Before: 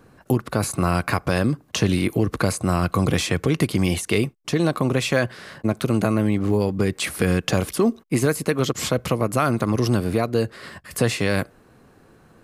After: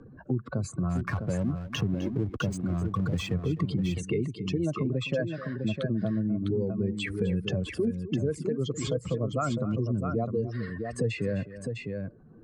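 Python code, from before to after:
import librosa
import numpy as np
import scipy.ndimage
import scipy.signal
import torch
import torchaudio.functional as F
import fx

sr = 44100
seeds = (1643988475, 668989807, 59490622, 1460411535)

y = fx.spec_expand(x, sr, power=2.3)
y = scipy.signal.sosfilt(scipy.signal.butter(8, 8400.0, 'lowpass', fs=sr, output='sos'), y)
y = fx.backlash(y, sr, play_db=-31.0, at=(0.89, 3.34), fade=0.02)
y = fx.echo_multitap(y, sr, ms=(255, 655), db=(-16.5, -7.5))
y = fx.band_squash(y, sr, depth_pct=40)
y = y * librosa.db_to_amplitude(-8.0)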